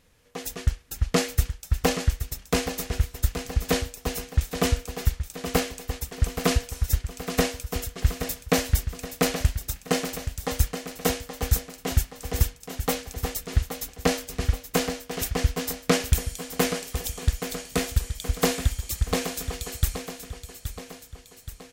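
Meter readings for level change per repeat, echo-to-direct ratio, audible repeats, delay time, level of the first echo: -5.5 dB, -8.0 dB, 3, 824 ms, -9.5 dB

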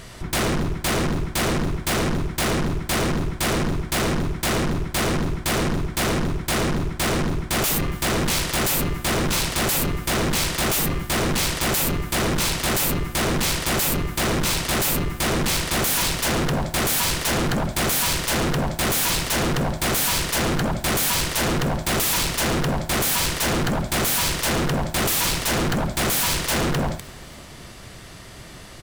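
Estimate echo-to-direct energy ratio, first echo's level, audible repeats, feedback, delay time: -22.5 dB, -24.0 dB, 3, 57%, 279 ms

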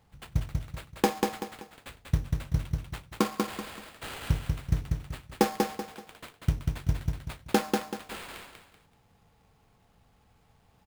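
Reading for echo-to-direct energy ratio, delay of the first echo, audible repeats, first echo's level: -3.0 dB, 191 ms, 3, -3.5 dB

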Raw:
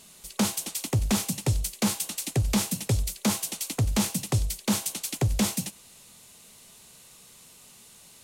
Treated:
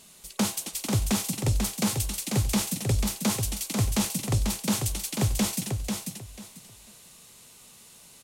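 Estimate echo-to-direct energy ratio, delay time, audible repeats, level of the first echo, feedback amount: -5.0 dB, 492 ms, 3, -5.0 dB, 22%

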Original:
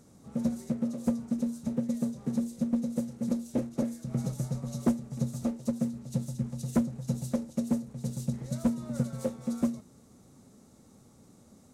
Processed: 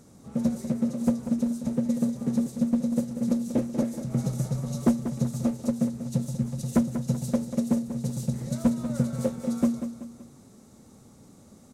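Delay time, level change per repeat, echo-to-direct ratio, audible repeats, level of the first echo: 190 ms, -6.5 dB, -9.0 dB, 3, -10.0 dB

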